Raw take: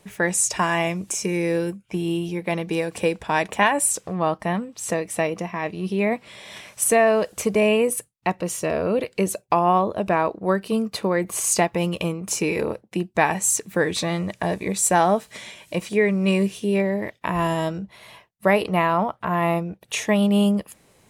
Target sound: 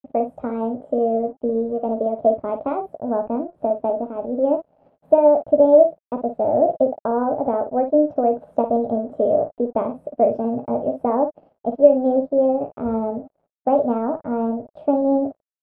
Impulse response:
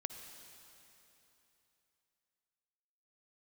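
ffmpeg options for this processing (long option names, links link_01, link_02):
-af "lowshelf=frequency=330:gain=10.5,aecho=1:1:23|72:0.335|0.398,aeval=exprs='sgn(val(0))*max(abs(val(0))-0.0133,0)':channel_layout=same,lowpass=frequency=460:width_type=q:width=4.9,asetrate=59535,aresample=44100,volume=-8dB"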